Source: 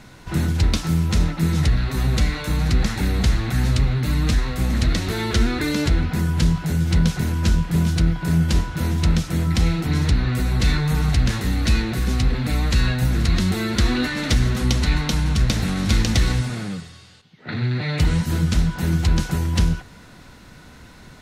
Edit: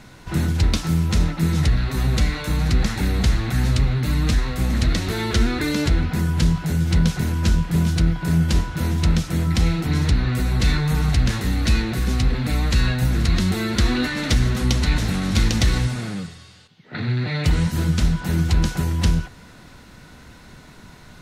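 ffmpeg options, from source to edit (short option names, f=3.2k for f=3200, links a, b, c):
-filter_complex "[0:a]asplit=2[a][b];[a]atrim=end=14.982[c];[b]atrim=start=15.518[d];[c][d]acrossfade=d=0.004:c1=hsin:c2=hsin"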